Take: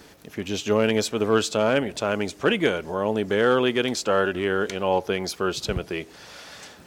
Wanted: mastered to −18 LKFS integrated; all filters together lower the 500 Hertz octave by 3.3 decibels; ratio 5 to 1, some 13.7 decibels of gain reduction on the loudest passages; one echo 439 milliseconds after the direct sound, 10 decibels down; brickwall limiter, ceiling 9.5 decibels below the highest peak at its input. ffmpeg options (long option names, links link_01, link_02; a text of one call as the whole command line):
ffmpeg -i in.wav -af "equalizer=frequency=500:width_type=o:gain=-4,acompressor=threshold=-33dB:ratio=5,alimiter=level_in=5dB:limit=-24dB:level=0:latency=1,volume=-5dB,aecho=1:1:439:0.316,volume=22dB" out.wav